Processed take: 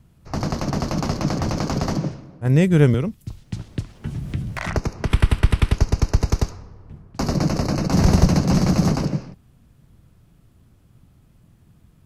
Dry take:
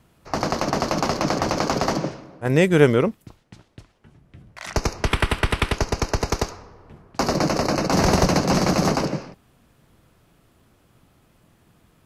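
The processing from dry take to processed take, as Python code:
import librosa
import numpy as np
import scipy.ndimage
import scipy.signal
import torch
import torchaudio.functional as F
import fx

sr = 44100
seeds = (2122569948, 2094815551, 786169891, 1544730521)

y = fx.bass_treble(x, sr, bass_db=14, treble_db=3)
y = fx.band_squash(y, sr, depth_pct=100, at=(2.94, 5.1))
y = y * librosa.db_to_amplitude(-6.0)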